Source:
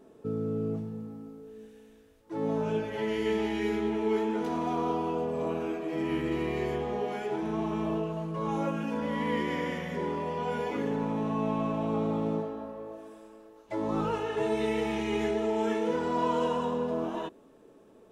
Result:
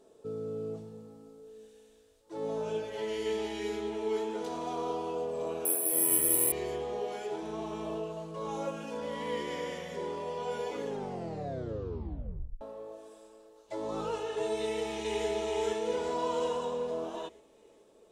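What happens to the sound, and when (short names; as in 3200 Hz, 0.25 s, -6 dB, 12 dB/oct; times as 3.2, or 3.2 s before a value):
5.65–6.52 careless resampling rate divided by 4×, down filtered, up zero stuff
10.85 tape stop 1.76 s
14.62–15.3 echo throw 0.42 s, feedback 50%, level -2.5 dB
whole clip: graphic EQ 125/250/500/2000/4000/8000 Hz -4/-6/+6/-3/+7/+10 dB; gain -6 dB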